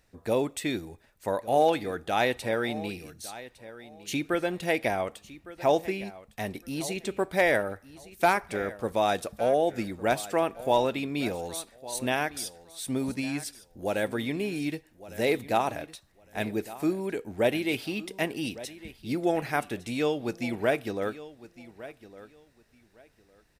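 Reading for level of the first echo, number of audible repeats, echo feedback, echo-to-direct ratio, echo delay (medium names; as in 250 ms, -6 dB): -17.0 dB, 2, 20%, -17.0 dB, 1158 ms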